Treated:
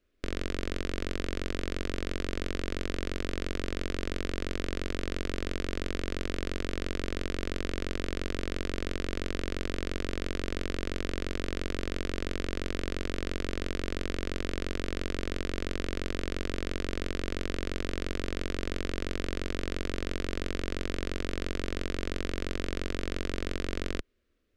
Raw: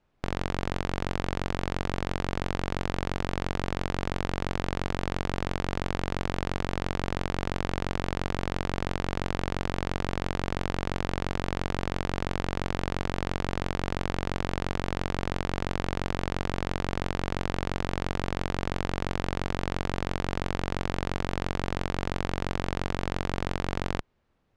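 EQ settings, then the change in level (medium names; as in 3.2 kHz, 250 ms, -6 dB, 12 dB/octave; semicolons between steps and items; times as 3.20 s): static phaser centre 350 Hz, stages 4; 0.0 dB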